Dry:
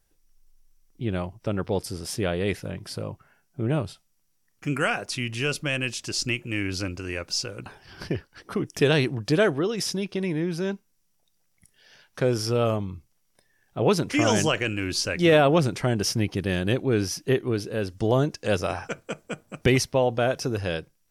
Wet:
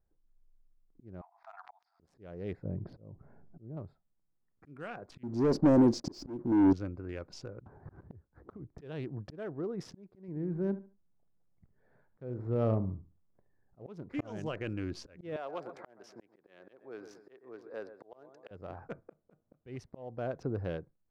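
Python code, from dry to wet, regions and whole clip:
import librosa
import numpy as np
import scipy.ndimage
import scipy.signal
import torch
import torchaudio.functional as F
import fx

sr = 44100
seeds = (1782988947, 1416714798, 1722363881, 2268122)

y = fx.chain(x, sr, fx.brickwall_bandpass(low_hz=660.0, high_hz=6500.0),
    fx.pre_swell(db_per_s=110.0), at=(1.21, 2.0))
y = fx.chain(y, sr, fx.moving_average(points=6),
    fx.peak_eq(hz=1500.0, db=-13.5, octaves=2.1),
    fx.env_flatten(amount_pct=50), at=(2.65, 3.77))
y = fx.chain(y, sr, fx.curve_eq(hz=(120.0, 280.0, 800.0, 1300.0, 2800.0, 4700.0, 10000.0), db=(0, 14, 3, -6, -29, 8, -8)),
    fx.leveller(passes=3), at=(5.23, 6.73))
y = fx.chain(y, sr, fx.median_filter(points=15),
    fx.peak_eq(hz=66.0, db=13.0, octaves=1.9),
    fx.band_squash(depth_pct=100), at=(7.6, 8.78))
y = fx.chain(y, sr, fx.median_filter(points=9),
    fx.low_shelf(hz=390.0, db=5.0),
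    fx.echo_feedback(ms=72, feedback_pct=26, wet_db=-14.5), at=(10.28, 13.79))
y = fx.chain(y, sr, fx.highpass(hz=640.0, slope=12),
    fx.echo_feedback(ms=124, feedback_pct=32, wet_db=-13.0),
    fx.band_squash(depth_pct=40), at=(15.36, 18.51))
y = fx.wiener(y, sr, points=15)
y = fx.lowpass(y, sr, hz=1000.0, slope=6)
y = fx.auto_swell(y, sr, attack_ms=514.0)
y = y * 10.0 ** (-6.5 / 20.0)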